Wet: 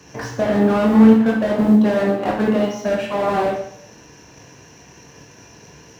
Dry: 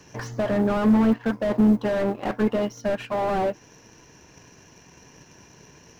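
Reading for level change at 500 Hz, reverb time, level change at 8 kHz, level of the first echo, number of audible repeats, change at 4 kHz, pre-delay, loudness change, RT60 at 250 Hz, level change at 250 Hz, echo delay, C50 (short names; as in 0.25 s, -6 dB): +6.0 dB, 0.65 s, n/a, none, none, +6.0 dB, 17 ms, +6.5 dB, 0.65 s, +7.0 dB, none, 4.5 dB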